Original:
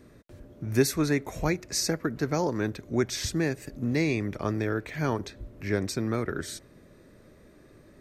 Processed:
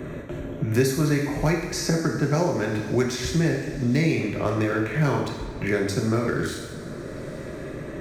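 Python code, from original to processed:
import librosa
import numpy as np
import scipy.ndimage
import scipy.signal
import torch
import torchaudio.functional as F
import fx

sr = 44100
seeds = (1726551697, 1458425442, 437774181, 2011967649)

y = fx.wiener(x, sr, points=9)
y = fx.rev_double_slope(y, sr, seeds[0], early_s=0.79, late_s=3.4, knee_db=-22, drr_db=-1.0)
y = fx.band_squash(y, sr, depth_pct=70)
y = y * librosa.db_to_amplitude(1.5)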